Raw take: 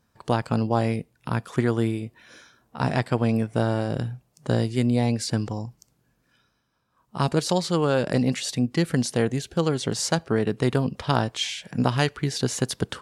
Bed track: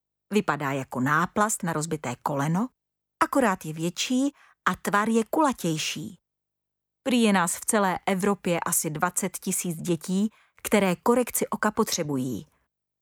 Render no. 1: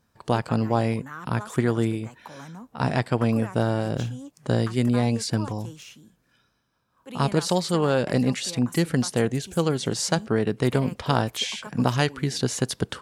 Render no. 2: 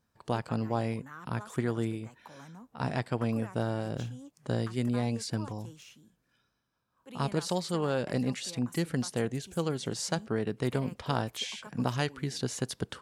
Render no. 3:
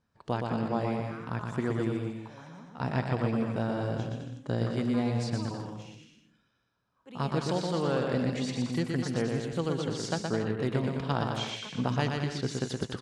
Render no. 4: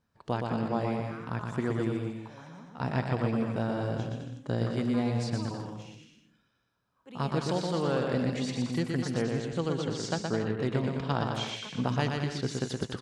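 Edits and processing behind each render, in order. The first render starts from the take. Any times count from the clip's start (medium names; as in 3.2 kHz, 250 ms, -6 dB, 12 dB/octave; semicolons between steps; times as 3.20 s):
add bed track -16 dB
trim -8 dB
distance through air 77 m; bouncing-ball echo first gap 120 ms, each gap 0.75×, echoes 5
9.24–11.34 s: low-pass 8.9 kHz 24 dB/octave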